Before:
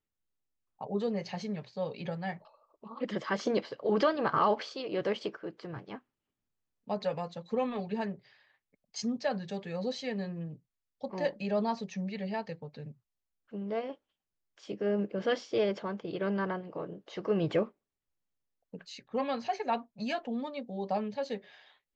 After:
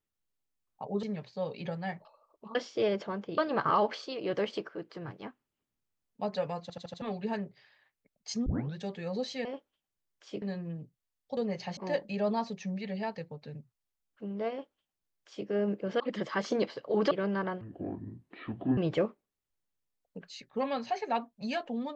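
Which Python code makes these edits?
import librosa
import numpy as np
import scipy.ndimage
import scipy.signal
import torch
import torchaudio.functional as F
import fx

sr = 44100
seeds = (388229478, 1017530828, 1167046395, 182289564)

y = fx.edit(x, sr, fx.move(start_s=1.03, length_s=0.4, to_s=11.08),
    fx.swap(start_s=2.95, length_s=1.11, other_s=15.31, other_length_s=0.83),
    fx.stutter_over(start_s=7.3, slice_s=0.08, count=5),
    fx.tape_start(start_s=9.14, length_s=0.29),
    fx.duplicate(start_s=13.81, length_s=0.97, to_s=10.13),
    fx.speed_span(start_s=16.64, length_s=0.71, speed=0.61), tone=tone)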